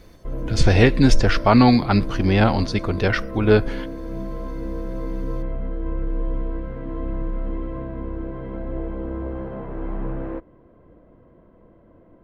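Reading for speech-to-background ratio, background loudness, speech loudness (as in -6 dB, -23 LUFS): 12.5 dB, -31.0 LUFS, -18.5 LUFS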